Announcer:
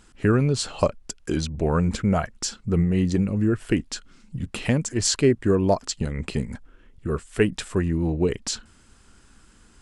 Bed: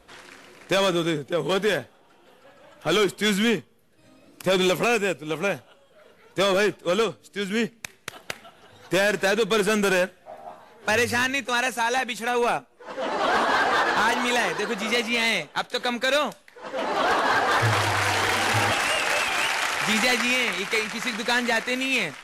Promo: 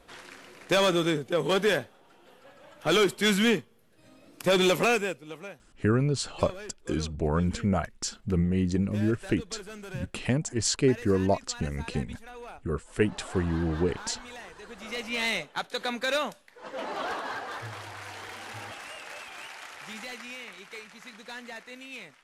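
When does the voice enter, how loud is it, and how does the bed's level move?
5.60 s, -4.5 dB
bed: 4.89 s -1.5 dB
5.62 s -21 dB
14.55 s -21 dB
15.23 s -5.5 dB
16.65 s -5.5 dB
17.73 s -18.5 dB

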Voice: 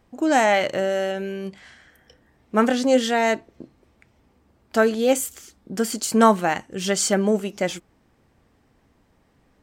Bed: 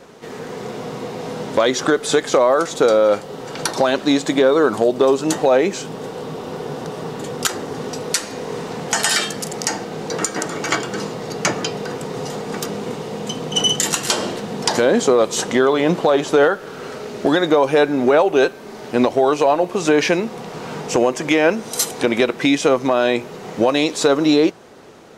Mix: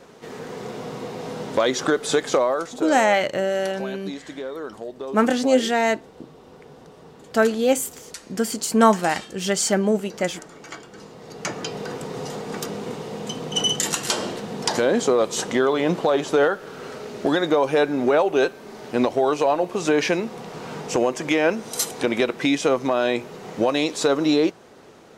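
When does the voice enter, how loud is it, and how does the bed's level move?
2.60 s, 0.0 dB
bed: 2.34 s -4 dB
3.07 s -18 dB
10.94 s -18 dB
11.8 s -4.5 dB

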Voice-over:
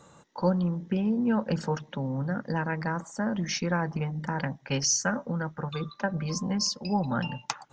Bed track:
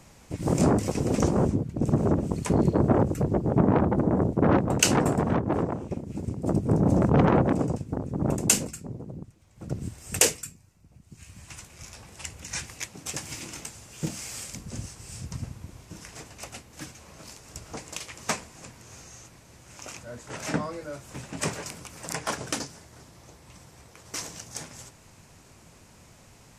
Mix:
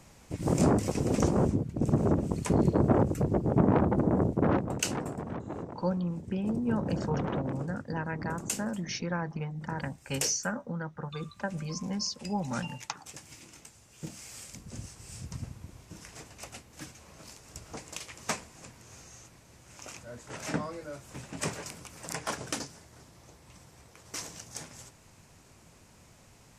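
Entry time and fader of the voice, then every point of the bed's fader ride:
5.40 s, -5.0 dB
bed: 4.3 s -2.5 dB
5.06 s -12.5 dB
13.59 s -12.5 dB
15.07 s -4 dB

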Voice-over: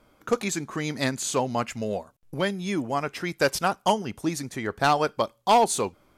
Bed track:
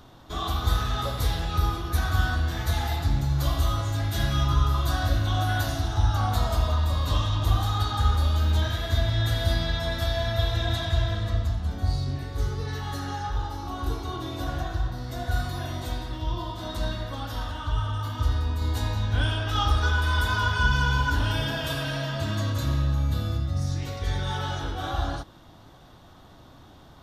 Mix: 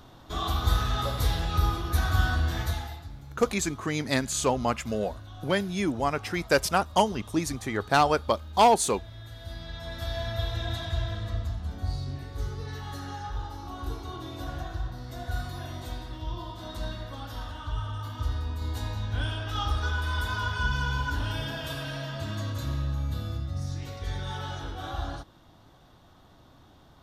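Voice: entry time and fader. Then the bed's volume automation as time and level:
3.10 s, 0.0 dB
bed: 2.61 s -0.5 dB
3.13 s -19.5 dB
9.26 s -19.5 dB
10.15 s -5.5 dB

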